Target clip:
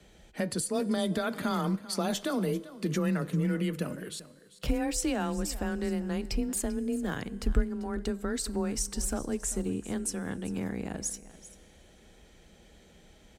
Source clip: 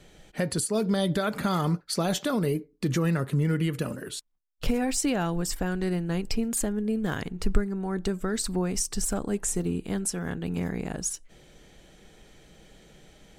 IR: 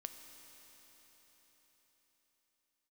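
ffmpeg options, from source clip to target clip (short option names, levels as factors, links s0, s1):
-filter_complex "[0:a]afreqshift=21,aecho=1:1:392:0.141,asplit=2[s0][s1];[1:a]atrim=start_sample=2205,asetrate=74970,aresample=44100[s2];[s1][s2]afir=irnorm=-1:irlink=0,volume=0.631[s3];[s0][s3]amix=inputs=2:normalize=0,volume=0.531"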